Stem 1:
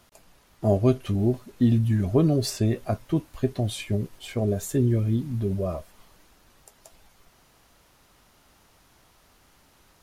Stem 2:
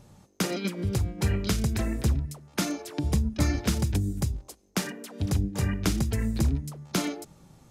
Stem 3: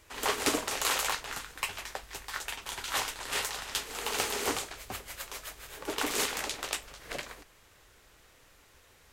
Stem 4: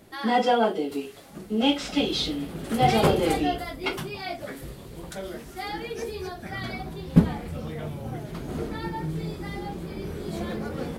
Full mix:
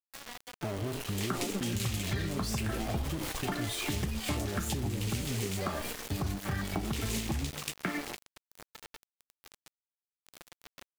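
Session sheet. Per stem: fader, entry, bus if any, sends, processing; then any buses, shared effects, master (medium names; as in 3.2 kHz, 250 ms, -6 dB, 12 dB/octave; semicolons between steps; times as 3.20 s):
+2.5 dB, 0.00 s, no send, compression, threshold -26 dBFS, peak gain reduction 11.5 dB; peak limiter -27.5 dBFS, peak gain reduction 10.5 dB; decay stretcher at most 41 dB/s
-2.5 dB, 0.90 s, no send, comb of notches 490 Hz; step-sequenced low-pass 4.2 Hz 830–1900 Hz
-2.0 dB, 0.95 s, no send, high-order bell 950 Hz -15.5 dB
0.0 dB, 0.00 s, no send, high-pass 1.3 kHz 6 dB/octave; compression 16:1, threshold -38 dBFS, peak gain reduction 17 dB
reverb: none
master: small samples zeroed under -34 dBFS; compression 4:1, threshold -30 dBFS, peak gain reduction 9 dB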